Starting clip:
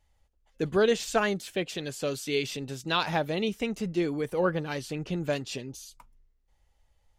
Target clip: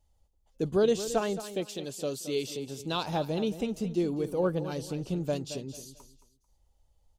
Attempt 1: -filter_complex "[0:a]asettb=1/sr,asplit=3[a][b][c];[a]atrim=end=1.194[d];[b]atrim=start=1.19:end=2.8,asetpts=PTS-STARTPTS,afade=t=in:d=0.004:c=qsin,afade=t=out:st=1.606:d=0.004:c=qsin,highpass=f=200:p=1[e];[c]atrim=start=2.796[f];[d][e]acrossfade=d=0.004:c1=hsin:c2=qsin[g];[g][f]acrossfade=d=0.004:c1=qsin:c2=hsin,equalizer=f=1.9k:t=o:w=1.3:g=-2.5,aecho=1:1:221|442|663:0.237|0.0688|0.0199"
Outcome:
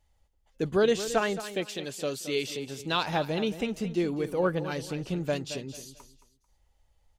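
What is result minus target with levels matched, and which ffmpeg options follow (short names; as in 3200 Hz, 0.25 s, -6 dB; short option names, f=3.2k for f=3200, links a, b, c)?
2000 Hz band +7.5 dB
-filter_complex "[0:a]asettb=1/sr,asplit=3[a][b][c];[a]atrim=end=1.194[d];[b]atrim=start=1.19:end=2.8,asetpts=PTS-STARTPTS,afade=t=in:d=0.004:c=qsin,afade=t=out:st=1.606:d=0.004:c=qsin,highpass=f=200:p=1[e];[c]atrim=start=2.796[f];[d][e]acrossfade=d=0.004:c1=hsin:c2=qsin[g];[g][f]acrossfade=d=0.004:c1=qsin:c2=hsin,equalizer=f=1.9k:t=o:w=1.3:g=-14,aecho=1:1:221|442|663:0.237|0.0688|0.0199"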